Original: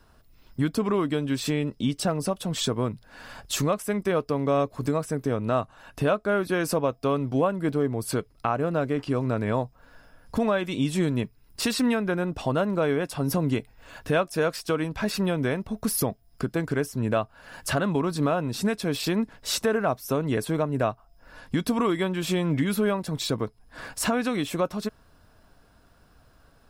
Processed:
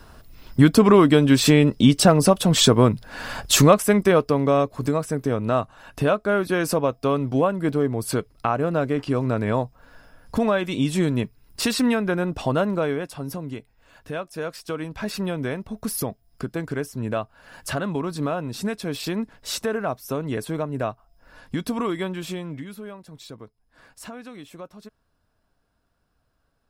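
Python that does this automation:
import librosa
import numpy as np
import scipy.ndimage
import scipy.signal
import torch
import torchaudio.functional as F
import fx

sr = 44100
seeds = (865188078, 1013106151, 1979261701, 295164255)

y = fx.gain(x, sr, db=fx.line((3.73, 11.0), (4.69, 3.0), (12.66, 3.0), (13.44, -8.0), (14.04, -8.0), (15.1, -1.5), (22.11, -1.5), (22.76, -13.5)))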